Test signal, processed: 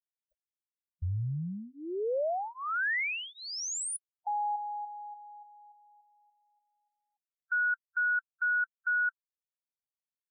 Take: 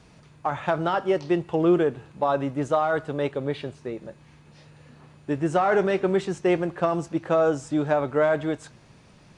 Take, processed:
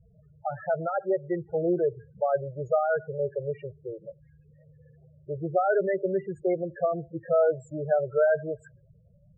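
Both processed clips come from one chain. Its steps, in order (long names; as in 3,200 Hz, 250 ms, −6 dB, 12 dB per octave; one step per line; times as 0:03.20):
phaser with its sweep stopped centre 990 Hz, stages 6
spectral peaks only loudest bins 8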